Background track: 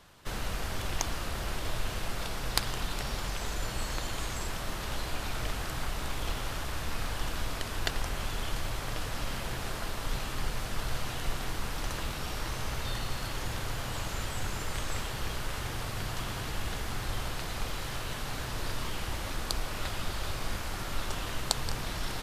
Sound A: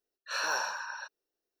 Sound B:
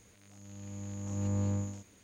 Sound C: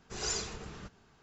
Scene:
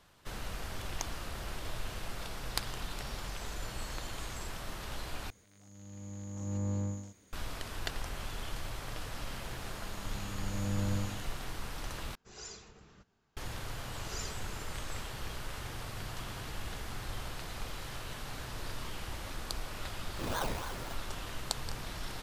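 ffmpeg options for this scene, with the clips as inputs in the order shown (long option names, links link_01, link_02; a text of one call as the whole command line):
ffmpeg -i bed.wav -i cue0.wav -i cue1.wav -i cue2.wav -filter_complex "[2:a]asplit=2[link_01][link_02];[3:a]asplit=2[link_03][link_04];[0:a]volume=-6dB[link_05];[link_01]equalizer=frequency=2600:width_type=o:width=0.29:gain=-5[link_06];[1:a]acrusher=samples=24:mix=1:aa=0.000001:lfo=1:lforange=14.4:lforate=3.5[link_07];[link_05]asplit=3[link_08][link_09][link_10];[link_08]atrim=end=5.304[link_11];[link_06]atrim=end=2.03,asetpts=PTS-STARTPTS,volume=-2.5dB[link_12];[link_09]atrim=start=7.326:end=12.154[link_13];[link_03]atrim=end=1.22,asetpts=PTS-STARTPTS,volume=-12.5dB[link_14];[link_10]atrim=start=13.366[link_15];[link_02]atrim=end=2.03,asetpts=PTS-STARTPTS,volume=-2dB,afade=type=in:duration=0.004:curve=hsin,afade=type=out:start_time=2.026:duration=0.004:curve=hsin,adelay=9420[link_16];[link_04]atrim=end=1.22,asetpts=PTS-STARTPTS,volume=-9dB,afade=type=in:duration=0.004:curve=hsin,afade=type=out:start_time=1.216:duration=0.004:curve=hsin,adelay=13890[link_17];[link_07]atrim=end=1.6,asetpts=PTS-STARTPTS,volume=-4.5dB,afade=type=in:duration=0.004:curve=hsin,afade=type=out:start_time=1.596:duration=0.004:curve=hsin,adelay=876708S[link_18];[link_11][link_12]acrossfade=duration=0.004:curve1=hsin:curve2=hsin[link_19];[link_19][link_13]acrossfade=duration=0.004:curve1=hsin:curve2=hsin[link_20];[link_20][link_14]acrossfade=duration=0.004:curve1=hsin:curve2=hsin[link_21];[link_21][link_15]acrossfade=duration=0.004:curve1=hsin:curve2=hsin[link_22];[link_22][link_16][link_17][link_18]amix=inputs=4:normalize=0" out.wav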